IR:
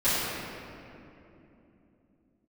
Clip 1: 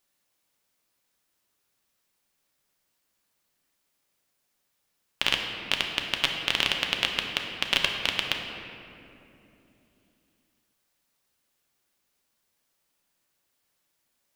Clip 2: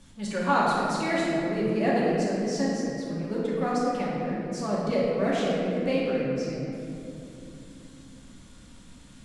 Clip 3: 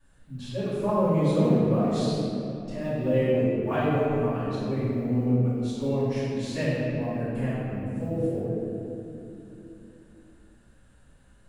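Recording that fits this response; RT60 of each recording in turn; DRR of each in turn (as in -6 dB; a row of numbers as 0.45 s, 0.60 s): 3; 3.0 s, 3.0 s, 3.0 s; 1.5 dB, -7.0 dB, -16.5 dB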